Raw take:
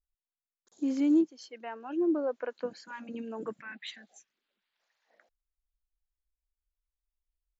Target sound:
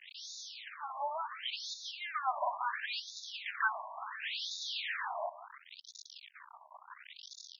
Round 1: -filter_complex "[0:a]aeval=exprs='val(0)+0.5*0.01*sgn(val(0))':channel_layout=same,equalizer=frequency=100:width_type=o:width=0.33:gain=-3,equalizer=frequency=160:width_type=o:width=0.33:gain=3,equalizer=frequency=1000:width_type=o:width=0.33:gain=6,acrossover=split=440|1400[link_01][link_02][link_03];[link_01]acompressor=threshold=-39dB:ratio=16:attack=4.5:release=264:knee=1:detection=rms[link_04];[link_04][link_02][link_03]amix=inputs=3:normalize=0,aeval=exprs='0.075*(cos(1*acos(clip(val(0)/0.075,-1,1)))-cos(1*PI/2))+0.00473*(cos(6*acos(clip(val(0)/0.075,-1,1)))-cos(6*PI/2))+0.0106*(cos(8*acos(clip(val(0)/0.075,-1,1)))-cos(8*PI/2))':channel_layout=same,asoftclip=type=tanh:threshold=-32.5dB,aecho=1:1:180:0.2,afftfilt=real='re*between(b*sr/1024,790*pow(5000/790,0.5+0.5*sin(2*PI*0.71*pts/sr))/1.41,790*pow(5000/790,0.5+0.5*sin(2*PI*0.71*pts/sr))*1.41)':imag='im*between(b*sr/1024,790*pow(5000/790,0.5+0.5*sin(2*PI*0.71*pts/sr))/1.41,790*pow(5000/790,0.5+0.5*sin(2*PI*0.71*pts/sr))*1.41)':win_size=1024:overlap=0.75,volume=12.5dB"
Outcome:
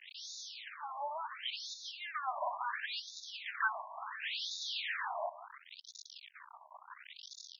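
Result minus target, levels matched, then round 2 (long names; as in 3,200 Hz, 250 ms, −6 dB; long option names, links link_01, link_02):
soft clipping: distortion +8 dB
-filter_complex "[0:a]aeval=exprs='val(0)+0.5*0.01*sgn(val(0))':channel_layout=same,equalizer=frequency=100:width_type=o:width=0.33:gain=-3,equalizer=frequency=160:width_type=o:width=0.33:gain=3,equalizer=frequency=1000:width_type=o:width=0.33:gain=6,acrossover=split=440|1400[link_01][link_02][link_03];[link_01]acompressor=threshold=-39dB:ratio=16:attack=4.5:release=264:knee=1:detection=rms[link_04];[link_04][link_02][link_03]amix=inputs=3:normalize=0,aeval=exprs='0.075*(cos(1*acos(clip(val(0)/0.075,-1,1)))-cos(1*PI/2))+0.00473*(cos(6*acos(clip(val(0)/0.075,-1,1)))-cos(6*PI/2))+0.0106*(cos(8*acos(clip(val(0)/0.075,-1,1)))-cos(8*PI/2))':channel_layout=same,asoftclip=type=tanh:threshold=-26.5dB,aecho=1:1:180:0.2,afftfilt=real='re*between(b*sr/1024,790*pow(5000/790,0.5+0.5*sin(2*PI*0.71*pts/sr))/1.41,790*pow(5000/790,0.5+0.5*sin(2*PI*0.71*pts/sr))*1.41)':imag='im*between(b*sr/1024,790*pow(5000/790,0.5+0.5*sin(2*PI*0.71*pts/sr))/1.41,790*pow(5000/790,0.5+0.5*sin(2*PI*0.71*pts/sr))*1.41)':win_size=1024:overlap=0.75,volume=12.5dB"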